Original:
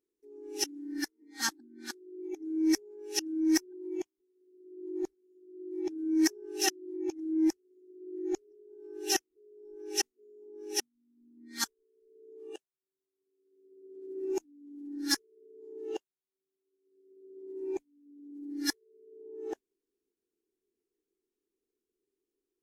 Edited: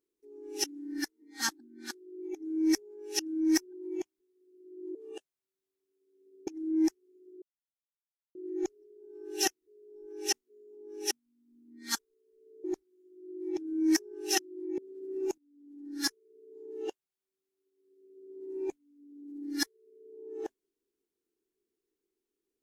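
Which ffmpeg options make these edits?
-filter_complex "[0:a]asplit=7[s0][s1][s2][s3][s4][s5][s6];[s0]atrim=end=4.952[s7];[s1]atrim=start=12.328:end=13.852[s8];[s2]atrim=start=7.088:end=8.04,asetpts=PTS-STARTPTS,afade=t=out:st=0.948:d=0.004:c=hsin,apad=pad_dur=0.93[s9];[s3]atrim=start=8.04:end=12.332,asetpts=PTS-STARTPTS,afade=t=in:d=0.004:c=hsin[s10];[s4]atrim=start=4.948:end=7.092[s11];[s5]atrim=start=13.848:end=14.45,asetpts=PTS-STARTPTS,afade=t=out:st=0.598:d=0.004:c=hsin:silence=0.211349[s12];[s6]atrim=start=14.45,asetpts=PTS-STARTPTS,afade=t=in:d=1.36:c=qsin:silence=0.211349[s13];[s7][s8]acrossfade=d=0.004:c1=hsin:c2=hsin[s14];[s9][s10]concat=n=2:v=0:a=1[s15];[s14][s15]acrossfade=d=0.004:c1=hsin:c2=hsin[s16];[s16][s11]acrossfade=d=0.004:c1=hsin:c2=hsin[s17];[s12][s13]concat=n=2:v=0:a=1[s18];[s17][s18]acrossfade=d=0.004:c1=hsin:c2=hsin"

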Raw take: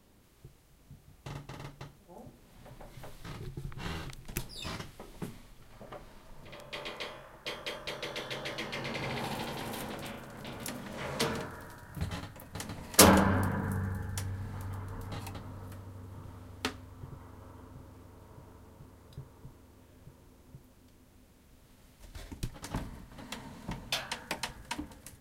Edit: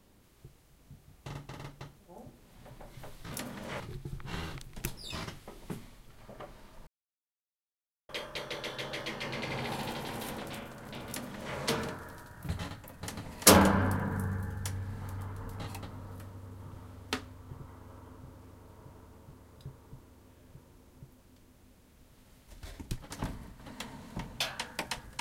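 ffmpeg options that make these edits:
-filter_complex "[0:a]asplit=5[s0][s1][s2][s3][s4];[s0]atrim=end=3.322[s5];[s1]atrim=start=10.608:end=11.092[s6];[s2]atrim=start=3.318:end=6.39,asetpts=PTS-STARTPTS,afade=t=out:st=3.068:d=0.004:c=hsin[s7];[s3]atrim=start=6.39:end=7.61,asetpts=PTS-STARTPTS,volume=0[s8];[s4]atrim=start=7.61,asetpts=PTS-STARTPTS,afade=t=in:d=0.004:c=hsin[s9];[s5][s6]acrossfade=d=0.004:c1=hsin:c2=hsin[s10];[s7][s8][s9]concat=n=3:v=0:a=1[s11];[s10][s11]acrossfade=d=0.004:c1=hsin:c2=hsin"

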